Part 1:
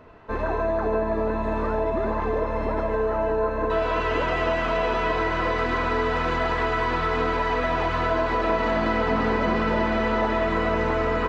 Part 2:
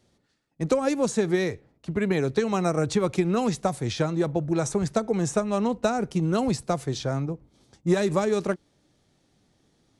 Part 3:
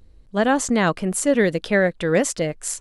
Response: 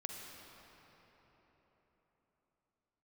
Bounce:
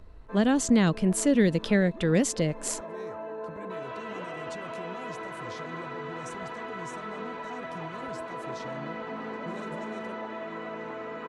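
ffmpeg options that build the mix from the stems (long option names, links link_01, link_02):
-filter_complex "[0:a]highpass=frequency=150:width=0.5412,highpass=frequency=150:width=1.3066,equalizer=frequency=4900:width=4.5:gain=-6.5,volume=-13.5dB[link_01];[1:a]alimiter=limit=-23dB:level=0:latency=1:release=106,adelay=1600,volume=-13dB[link_02];[2:a]highshelf=frequency=6600:gain=-10,volume=1dB,asplit=2[link_03][link_04];[link_04]apad=whole_len=511283[link_05];[link_02][link_05]sidechaincompress=threshold=-34dB:ratio=8:attack=16:release=571[link_06];[link_01][link_06][link_03]amix=inputs=3:normalize=0,acrossover=split=320|3000[link_07][link_08][link_09];[link_08]acompressor=threshold=-32dB:ratio=3[link_10];[link_07][link_10][link_09]amix=inputs=3:normalize=0"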